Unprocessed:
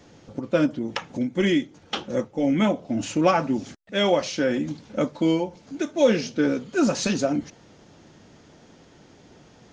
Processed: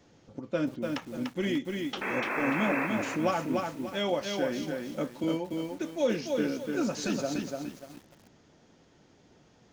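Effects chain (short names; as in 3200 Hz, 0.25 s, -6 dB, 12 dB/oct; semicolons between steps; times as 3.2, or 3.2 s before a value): 2.01–2.87 painted sound noise 210–2700 Hz -24 dBFS; 4.62–5.24 HPF 130 Hz 24 dB/oct; lo-fi delay 0.294 s, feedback 35%, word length 7-bit, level -3.5 dB; gain -9 dB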